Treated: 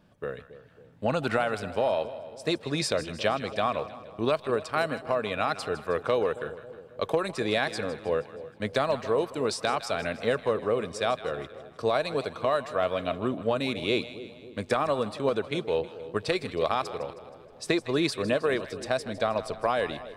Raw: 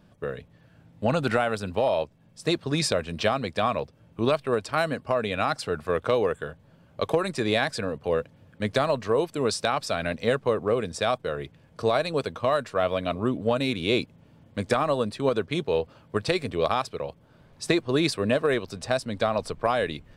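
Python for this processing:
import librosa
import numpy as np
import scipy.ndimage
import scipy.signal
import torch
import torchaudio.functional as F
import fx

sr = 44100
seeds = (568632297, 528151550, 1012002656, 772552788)

y = fx.bass_treble(x, sr, bass_db=-4, treble_db=-2)
y = fx.echo_split(y, sr, split_hz=680.0, low_ms=273, high_ms=158, feedback_pct=52, wet_db=-14)
y = y * librosa.db_to_amplitude(-2.0)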